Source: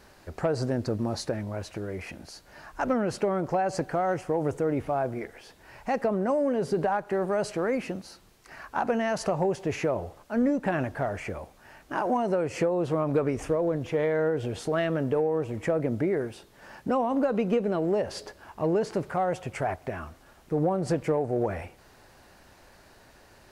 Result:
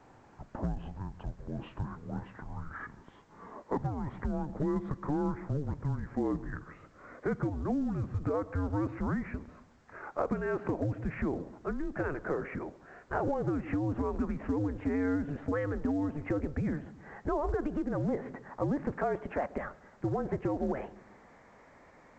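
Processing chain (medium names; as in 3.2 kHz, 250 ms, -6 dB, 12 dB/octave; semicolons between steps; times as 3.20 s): gliding tape speed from 69% -> 143%; band-passed feedback delay 135 ms, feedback 51%, band-pass 390 Hz, level -18.5 dB; compression 16:1, threshold -26 dBFS, peak gain reduction 7.5 dB; mistuned SSB -290 Hz 340–2300 Hz; A-law 128 kbps 16 kHz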